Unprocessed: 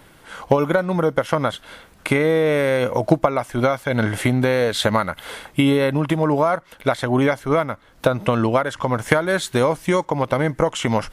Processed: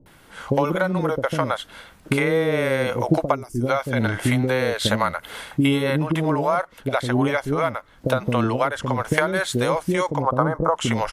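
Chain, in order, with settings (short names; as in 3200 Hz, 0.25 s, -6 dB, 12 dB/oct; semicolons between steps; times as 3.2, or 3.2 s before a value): 3.29–3.61 spectral gain 440–4600 Hz -19 dB; 10.16–10.7 resonant high shelf 1700 Hz -11.5 dB, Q 3; bands offset in time lows, highs 60 ms, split 460 Hz; gain -1 dB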